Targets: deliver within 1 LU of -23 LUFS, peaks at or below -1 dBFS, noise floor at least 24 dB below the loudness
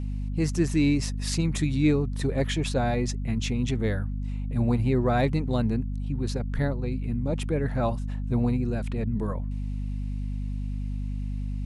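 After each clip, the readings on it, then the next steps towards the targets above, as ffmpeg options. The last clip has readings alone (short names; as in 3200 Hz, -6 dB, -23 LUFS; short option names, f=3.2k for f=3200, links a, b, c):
hum 50 Hz; harmonics up to 250 Hz; hum level -28 dBFS; loudness -27.5 LUFS; peak -12.0 dBFS; loudness target -23.0 LUFS
-> -af "bandreject=f=50:t=h:w=6,bandreject=f=100:t=h:w=6,bandreject=f=150:t=h:w=6,bandreject=f=200:t=h:w=6,bandreject=f=250:t=h:w=6"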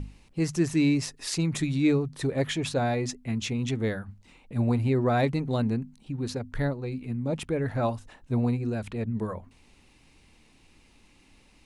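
hum none; loudness -28.5 LUFS; peak -13.5 dBFS; loudness target -23.0 LUFS
-> -af "volume=5.5dB"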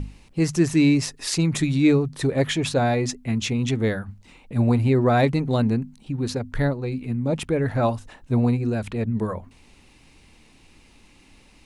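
loudness -23.0 LUFS; peak -8.0 dBFS; noise floor -54 dBFS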